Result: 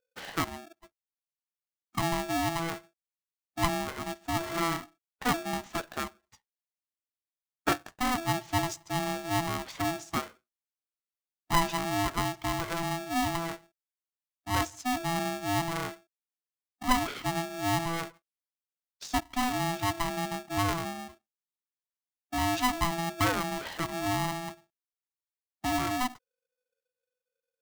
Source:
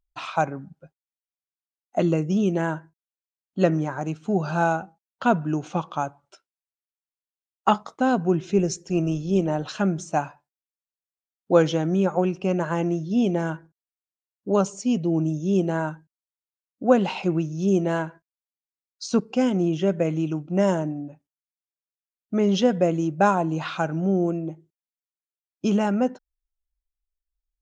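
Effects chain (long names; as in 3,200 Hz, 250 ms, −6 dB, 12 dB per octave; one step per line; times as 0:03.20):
ring modulator with a square carrier 500 Hz
level −8 dB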